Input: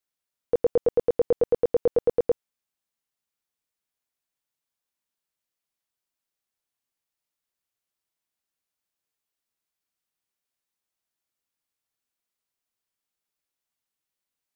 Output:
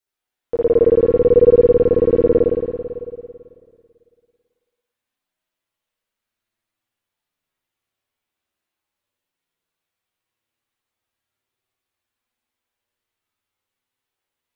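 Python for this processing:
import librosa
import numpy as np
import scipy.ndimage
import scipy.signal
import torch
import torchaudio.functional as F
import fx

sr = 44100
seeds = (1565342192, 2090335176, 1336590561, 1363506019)

y = fx.rev_spring(x, sr, rt60_s=2.2, pass_ms=(55,), chirp_ms=30, drr_db=-7.0)
y = fx.chorus_voices(y, sr, voices=4, hz=0.16, base_ms=10, depth_ms=2.1, mix_pct=40)
y = F.gain(torch.from_numpy(y), 3.0).numpy()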